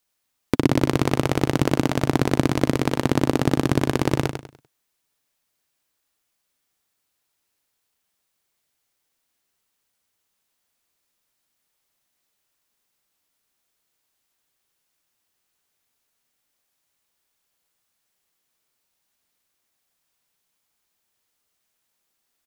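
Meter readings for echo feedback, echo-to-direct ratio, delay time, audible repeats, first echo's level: 31%, −6.5 dB, 98 ms, 3, −7.0 dB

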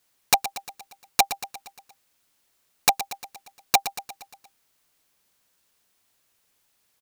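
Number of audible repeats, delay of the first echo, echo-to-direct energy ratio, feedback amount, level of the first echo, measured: 5, 117 ms, −11.0 dB, 57%, −12.5 dB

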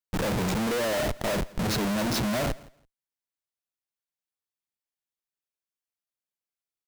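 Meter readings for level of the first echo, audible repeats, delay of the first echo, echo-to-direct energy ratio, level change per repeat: −22.0 dB, 1, 166 ms, −22.0 dB, repeats not evenly spaced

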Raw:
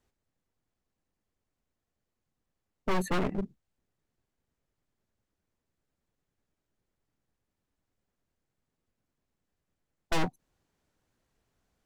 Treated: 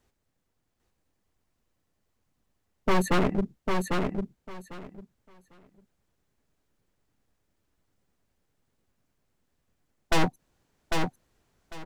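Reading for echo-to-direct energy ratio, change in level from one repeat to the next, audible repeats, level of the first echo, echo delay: −4.0 dB, −15.0 dB, 3, −4.0 dB, 799 ms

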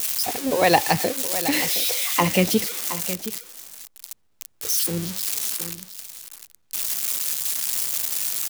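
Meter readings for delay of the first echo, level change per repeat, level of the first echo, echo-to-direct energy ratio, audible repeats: 718 ms, repeats not evenly spaced, −12.5 dB, −12.5 dB, 1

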